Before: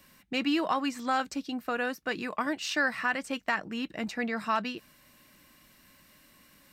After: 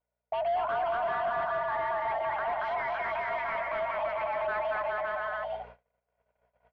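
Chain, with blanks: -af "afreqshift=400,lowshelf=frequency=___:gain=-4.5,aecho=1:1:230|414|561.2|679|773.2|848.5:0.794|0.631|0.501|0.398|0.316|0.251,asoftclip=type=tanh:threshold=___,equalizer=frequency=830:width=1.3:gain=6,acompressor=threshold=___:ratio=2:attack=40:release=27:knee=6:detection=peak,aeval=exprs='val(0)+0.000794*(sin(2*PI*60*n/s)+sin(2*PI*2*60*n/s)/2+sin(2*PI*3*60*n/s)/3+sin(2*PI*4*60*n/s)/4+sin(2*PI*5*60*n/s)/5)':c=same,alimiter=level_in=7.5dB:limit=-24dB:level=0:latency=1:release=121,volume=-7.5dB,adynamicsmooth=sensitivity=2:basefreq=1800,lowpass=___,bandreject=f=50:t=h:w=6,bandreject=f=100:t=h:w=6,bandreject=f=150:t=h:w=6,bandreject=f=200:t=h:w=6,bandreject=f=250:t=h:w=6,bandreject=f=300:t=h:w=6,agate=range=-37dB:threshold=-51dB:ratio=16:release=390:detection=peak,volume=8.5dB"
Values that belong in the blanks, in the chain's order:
87, -26dB, -39dB, 2500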